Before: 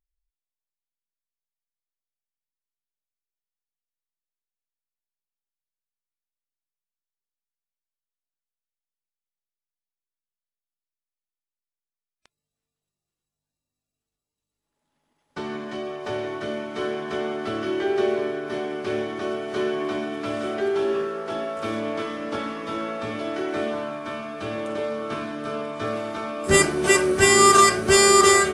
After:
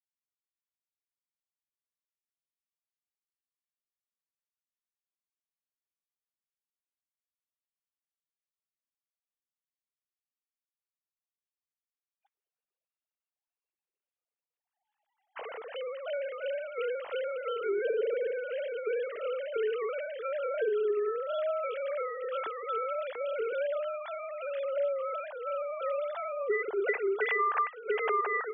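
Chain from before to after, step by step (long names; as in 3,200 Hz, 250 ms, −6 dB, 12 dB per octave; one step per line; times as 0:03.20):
three sine waves on the formant tracks
0:26.32–0:26.82: low-pass filter 1,400 Hz 6 dB per octave
downward compressor 20 to 1, threshold −26 dBFS, peak gain reduction 23 dB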